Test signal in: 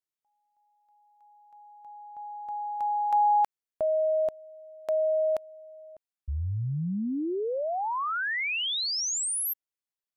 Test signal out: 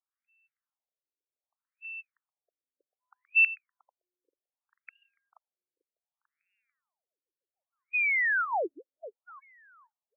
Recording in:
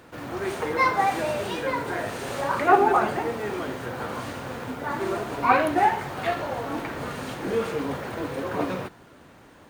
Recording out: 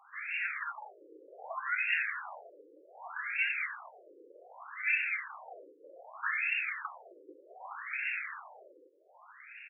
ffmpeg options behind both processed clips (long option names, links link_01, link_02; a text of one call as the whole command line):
ffmpeg -i in.wav -filter_complex "[0:a]asplit=2[link_01][link_02];[link_02]acompressor=threshold=-32dB:ratio=6:attack=0.14:release=63:detection=rms,volume=-1.5dB[link_03];[link_01][link_03]amix=inputs=2:normalize=0,aecho=1:1:443|886|1329:0.266|0.0798|0.0239,lowpass=frequency=3000:width_type=q:width=0.5098,lowpass=frequency=3000:width_type=q:width=0.6013,lowpass=frequency=3000:width_type=q:width=0.9,lowpass=frequency=3000:width_type=q:width=2.563,afreqshift=-3500,afftfilt=real='re*between(b*sr/1024,380*pow(2000/380,0.5+0.5*sin(2*PI*0.65*pts/sr))/1.41,380*pow(2000/380,0.5+0.5*sin(2*PI*0.65*pts/sr))*1.41)':imag='im*between(b*sr/1024,380*pow(2000/380,0.5+0.5*sin(2*PI*0.65*pts/sr))/1.41,380*pow(2000/380,0.5+0.5*sin(2*PI*0.65*pts/sr))*1.41)':win_size=1024:overlap=0.75" out.wav